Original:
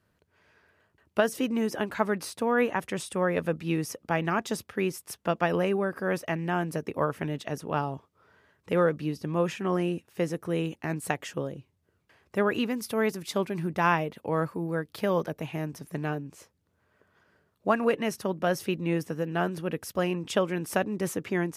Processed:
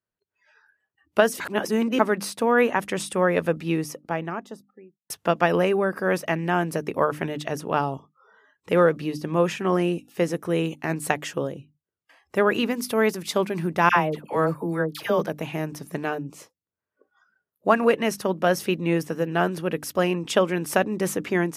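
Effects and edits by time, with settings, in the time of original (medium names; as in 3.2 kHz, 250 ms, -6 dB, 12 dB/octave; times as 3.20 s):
1.40–1.99 s: reverse
3.36–5.10 s: studio fade out
13.89–15.19 s: phase dispersion lows, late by 74 ms, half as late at 1.1 kHz
whole clip: hum notches 50/100/150/200/250/300 Hz; spectral noise reduction 25 dB; bass shelf 86 Hz -10.5 dB; trim +6 dB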